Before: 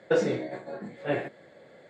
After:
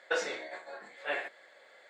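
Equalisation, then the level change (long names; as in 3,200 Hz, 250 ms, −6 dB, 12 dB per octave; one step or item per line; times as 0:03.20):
high-pass filter 1,000 Hz 12 dB per octave
+2.5 dB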